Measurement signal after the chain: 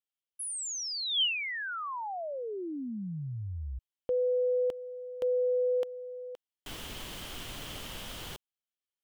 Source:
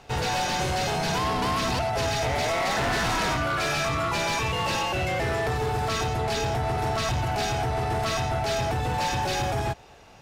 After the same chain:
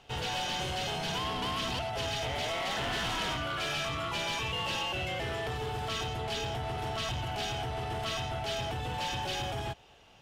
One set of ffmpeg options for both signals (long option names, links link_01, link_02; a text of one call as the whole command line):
ffmpeg -i in.wav -af "equalizer=frequency=3100:width=3.9:gain=11.5,volume=-9dB" out.wav